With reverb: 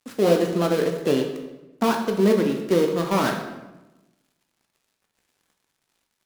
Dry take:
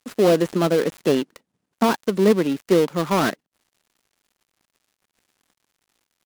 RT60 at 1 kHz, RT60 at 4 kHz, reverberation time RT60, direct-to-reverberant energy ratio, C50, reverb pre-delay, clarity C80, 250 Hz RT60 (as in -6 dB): 1.0 s, 0.75 s, 1.0 s, 2.5 dB, 6.0 dB, 12 ms, 8.5 dB, 1.3 s